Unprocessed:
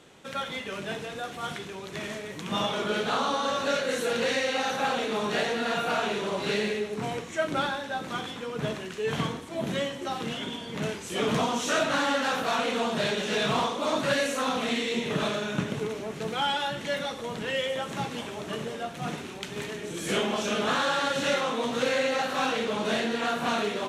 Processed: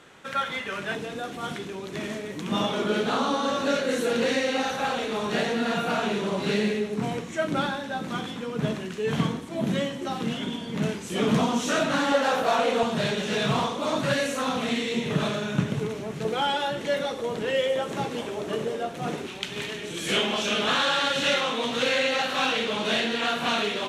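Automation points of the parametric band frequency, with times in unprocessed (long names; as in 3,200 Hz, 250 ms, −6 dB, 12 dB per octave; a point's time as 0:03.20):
parametric band +7.5 dB 1.3 octaves
1,500 Hz
from 0:00.95 270 Hz
from 0:04.67 61 Hz
from 0:05.32 200 Hz
from 0:12.12 590 Hz
from 0:12.83 130 Hz
from 0:16.25 430 Hz
from 0:19.27 3,100 Hz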